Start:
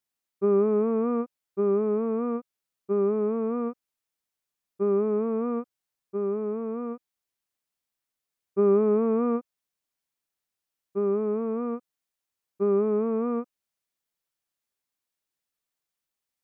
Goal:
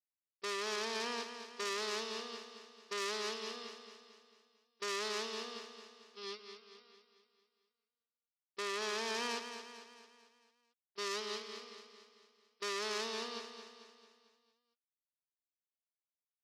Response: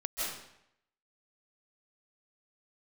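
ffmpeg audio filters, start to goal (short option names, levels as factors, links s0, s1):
-af "aresample=11025,acrusher=bits=5:mix=0:aa=0.5,aresample=44100,agate=range=0.0282:threshold=0.0562:ratio=16:detection=peak,alimiter=limit=0.119:level=0:latency=1:release=325,asoftclip=type=tanh:threshold=0.0237,aderivative,aecho=1:1:223|446|669|892|1115|1338:0.355|0.177|0.0887|0.0444|0.0222|0.0111,volume=6.68"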